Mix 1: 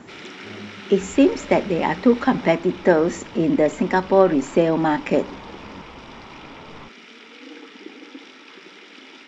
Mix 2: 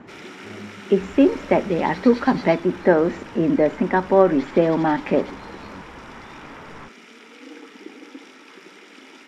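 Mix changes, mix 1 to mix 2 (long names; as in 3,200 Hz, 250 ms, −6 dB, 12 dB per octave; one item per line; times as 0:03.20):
first sound: remove low-pass filter 3,800 Hz 24 dB per octave
second sound: remove low-pass filter 1,200 Hz 24 dB per octave
master: add low-pass filter 2,500 Hz 12 dB per octave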